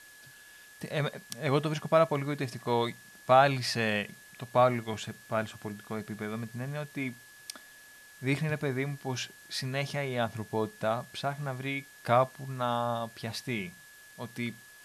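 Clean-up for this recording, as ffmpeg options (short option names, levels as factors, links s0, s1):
-af "bandreject=f=1700:w=30,afftdn=nr=23:nf=-54"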